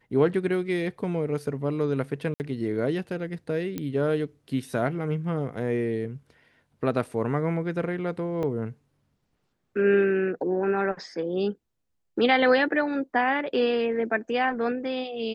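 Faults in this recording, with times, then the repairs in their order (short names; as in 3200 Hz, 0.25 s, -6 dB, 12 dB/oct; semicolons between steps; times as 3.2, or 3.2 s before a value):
2.34–2.4 gap 59 ms
3.78 pop -17 dBFS
8.43 gap 4.5 ms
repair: de-click; interpolate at 2.34, 59 ms; interpolate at 8.43, 4.5 ms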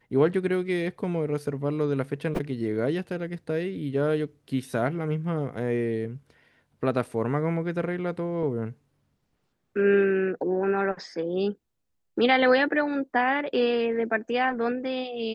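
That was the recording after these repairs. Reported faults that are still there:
none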